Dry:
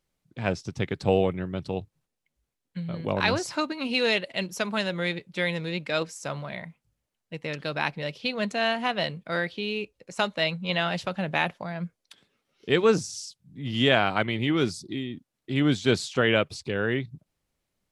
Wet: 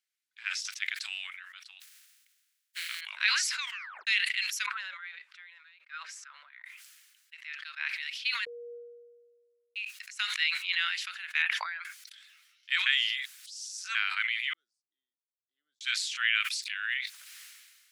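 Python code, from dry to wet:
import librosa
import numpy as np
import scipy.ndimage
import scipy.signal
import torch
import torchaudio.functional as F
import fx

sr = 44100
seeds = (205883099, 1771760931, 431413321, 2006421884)

y = fx.high_shelf(x, sr, hz=2800.0, db=5.5, at=(0.73, 1.27))
y = fx.spec_flatten(y, sr, power=0.4, at=(1.8, 2.99), fade=0.02)
y = fx.wah_lfo(y, sr, hz=3.3, low_hz=390.0, high_hz=1400.0, q=3.6, at=(4.66, 6.64))
y = fx.lowpass(y, sr, hz=2000.0, slope=6, at=(7.34, 7.89))
y = fx.envelope_sharpen(y, sr, power=1.5, at=(11.42, 11.85))
y = fx.cheby2_lowpass(y, sr, hz=910.0, order=4, stop_db=80, at=(14.53, 15.81))
y = fx.high_shelf(y, sr, hz=3600.0, db=7.5, at=(16.4, 16.98))
y = fx.edit(y, sr, fx.tape_stop(start_s=3.58, length_s=0.49),
    fx.bleep(start_s=8.45, length_s=1.31, hz=476.0, db=-16.5),
    fx.reverse_span(start_s=12.86, length_s=1.09), tone=tone)
y = scipy.signal.sosfilt(scipy.signal.butter(6, 1500.0, 'highpass', fs=sr, output='sos'), y)
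y = fx.dynamic_eq(y, sr, hz=2200.0, q=1.7, threshold_db=-42.0, ratio=4.0, max_db=5)
y = fx.sustainer(y, sr, db_per_s=36.0)
y = F.gain(torch.from_numpy(y), -4.0).numpy()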